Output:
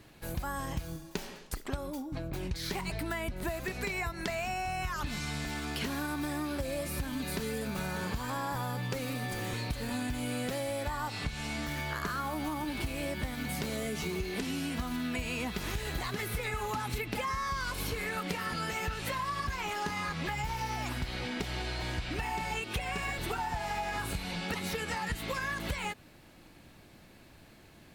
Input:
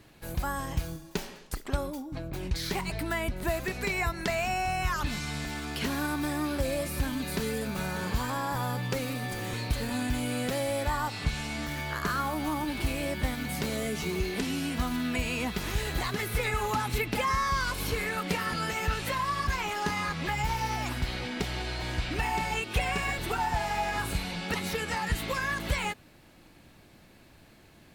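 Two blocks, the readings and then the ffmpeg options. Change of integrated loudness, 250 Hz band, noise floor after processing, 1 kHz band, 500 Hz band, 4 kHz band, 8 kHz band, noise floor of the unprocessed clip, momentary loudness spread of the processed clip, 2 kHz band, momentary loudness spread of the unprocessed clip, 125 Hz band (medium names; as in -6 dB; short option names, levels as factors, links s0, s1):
-4.0 dB, -3.5 dB, -56 dBFS, -4.5 dB, -4.0 dB, -3.5 dB, -3.5 dB, -56 dBFS, 2 LU, -4.0 dB, 5 LU, -4.0 dB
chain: -af "acompressor=threshold=0.0282:ratio=6"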